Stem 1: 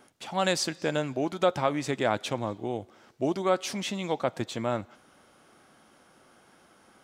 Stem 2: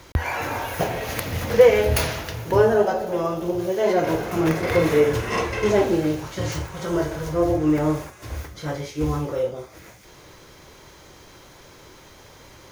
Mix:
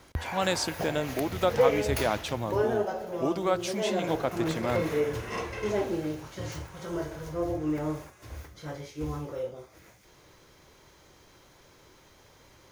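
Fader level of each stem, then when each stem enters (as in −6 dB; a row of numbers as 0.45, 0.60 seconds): −1.5, −10.0 decibels; 0.00, 0.00 seconds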